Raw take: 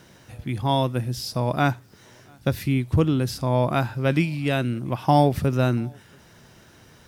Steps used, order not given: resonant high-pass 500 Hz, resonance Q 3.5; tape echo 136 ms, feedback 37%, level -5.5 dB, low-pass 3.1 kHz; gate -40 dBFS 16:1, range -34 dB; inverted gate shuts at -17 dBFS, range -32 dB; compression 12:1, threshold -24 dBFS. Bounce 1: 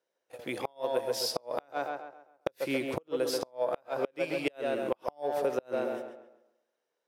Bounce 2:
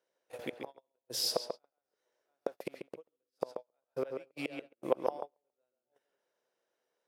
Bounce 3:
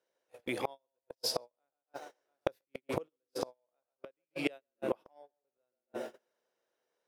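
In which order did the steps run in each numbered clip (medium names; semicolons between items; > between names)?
gate > tape echo > resonant high-pass > compression > inverted gate; inverted gate > tape echo > gate > compression > resonant high-pass; tape echo > resonant high-pass > inverted gate > compression > gate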